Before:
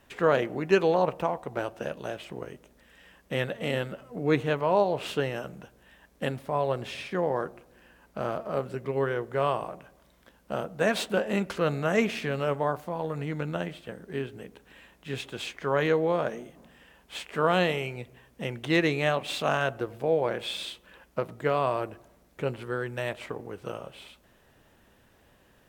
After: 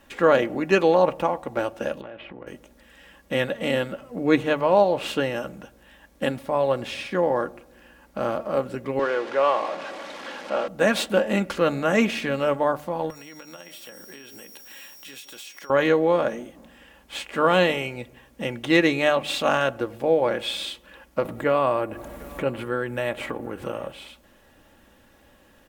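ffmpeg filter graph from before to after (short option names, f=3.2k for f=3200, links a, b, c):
-filter_complex "[0:a]asettb=1/sr,asplit=3[a][b][c];[a]atrim=end=2.014[d];[b]atrim=start=2.01:end=2.47,asetpts=PTS-STARTPTS,afade=t=in:d=0.004:c=qsin,afade=t=out:st=0.456:d=0.004:c=qsin,lowpass=f=2.9k:w=0.5412,lowpass=f=2.9k:w=1.3066,acompressor=threshold=-40dB:ratio=6:attack=3.2:release=140:knee=1:detection=peak[e];[c]atrim=start=2.466[f];[d][e]acrossfade=d=0.004:c1=hsin:c2=qsin[g];[g][f]acrossfade=d=0.004:c1=qsin:c2=hsin,asettb=1/sr,asplit=3[h][i][j];[h]atrim=end=8.994[k];[i]atrim=start=8.99:end=10.68,asetpts=PTS-STARTPTS,afade=t=in:d=0.004:c=qsin,afade=t=out:st=1.686:d=0.004:c=qsin,aeval=exprs='val(0)+0.5*0.0224*sgn(val(0))':c=same,highpass=380,lowpass=3.9k[l];[j]atrim=start=10.676[m];[k][l]acrossfade=d=0.004:c1=hsin:c2=qsin[n];[n][m]acrossfade=d=0.004:c1=qsin:c2=hsin,asettb=1/sr,asplit=3[o][p][q];[o]atrim=end=13.104[r];[p]atrim=start=13.1:end=15.7,asetpts=PTS-STARTPTS,afade=t=in:d=0.004:c=qsin,afade=t=out:st=2.596:d=0.004:c=qsin,aemphasis=mode=production:type=riaa,acompressor=threshold=-43dB:ratio=10:attack=3.2:release=140:knee=1:detection=peak,aeval=exprs='val(0)+0.00141*sin(2*PI*5600*n/s)':c=same[s];[q]atrim=start=15.696[t];[r][s]acrossfade=d=0.004:c1=hsin:c2=qsin[u];[u][t]acrossfade=d=0.004:c1=qsin:c2=hsin,asettb=1/sr,asplit=3[v][w][x];[v]atrim=end=21.254[y];[w]atrim=start=21.25:end=23.92,asetpts=PTS-STARTPTS,afade=t=in:d=0.004:c=qsin,afade=t=out:st=2.666:d=0.004:c=qsin,equalizer=f=5.3k:t=o:w=1.1:g=-7.5,acompressor=mode=upward:threshold=-29dB:ratio=2.5:attack=3.2:release=140:knee=2.83:detection=peak,aecho=1:1:752:0.075,atrim=end_sample=117747[z];[x]atrim=start=23.916[aa];[y][z]acrossfade=d=0.004:c1=hsin:c2=qsin[ab];[ab][aa]acrossfade=d=0.004:c1=qsin:c2=hsin,bandreject=f=50:t=h:w=6,bandreject=f=100:t=h:w=6,bandreject=f=150:t=h:w=6,aecho=1:1:3.6:0.43,volume=4.5dB"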